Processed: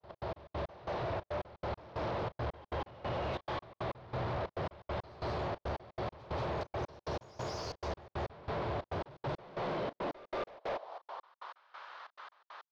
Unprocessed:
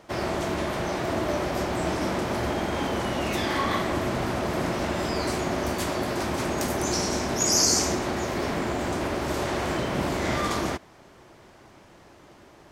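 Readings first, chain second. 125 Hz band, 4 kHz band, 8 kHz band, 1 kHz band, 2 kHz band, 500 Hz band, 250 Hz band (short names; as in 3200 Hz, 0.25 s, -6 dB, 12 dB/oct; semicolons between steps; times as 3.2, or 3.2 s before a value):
-9.0 dB, -18.5 dB, -33.5 dB, -10.5 dB, -15.0 dB, -10.5 dB, -17.0 dB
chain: opening faded in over 1.05 s; ten-band EQ 125 Hz +8 dB, 250 Hz -10 dB, 500 Hz +9 dB, 1000 Hz +7 dB, 2000 Hz -5 dB, 4000 Hz +10 dB, 8000 Hz -3 dB; compressor 2.5:1, threshold -38 dBFS, peak gain reduction 15.5 dB; high-pass sweep 74 Hz -> 1400 Hz, 8.85–11.63; overloaded stage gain 35 dB; step gate "x.x..x..xx" 138 bpm -60 dB; air absorption 250 m; pre-echo 0.183 s -16.5 dB; gain +2.5 dB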